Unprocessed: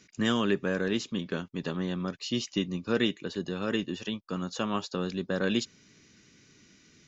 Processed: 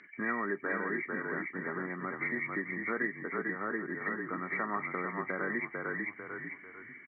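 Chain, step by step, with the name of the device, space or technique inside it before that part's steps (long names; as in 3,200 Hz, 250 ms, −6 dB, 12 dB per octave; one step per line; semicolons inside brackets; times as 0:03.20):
0:03.23–0:04.02: low-pass filter 2,900 Hz 12 dB per octave
echo with shifted repeats 446 ms, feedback 34%, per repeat −33 Hz, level −4.5 dB
hearing aid with frequency lowering (hearing-aid frequency compression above 1,600 Hz 4 to 1; downward compressor 2.5 to 1, threshold −34 dBFS, peak gain reduction 10 dB; loudspeaker in its box 330–6,400 Hz, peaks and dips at 520 Hz −8 dB, 1,300 Hz +5 dB, 2,600 Hz −4 dB, 3,900 Hz +8 dB)
level +3.5 dB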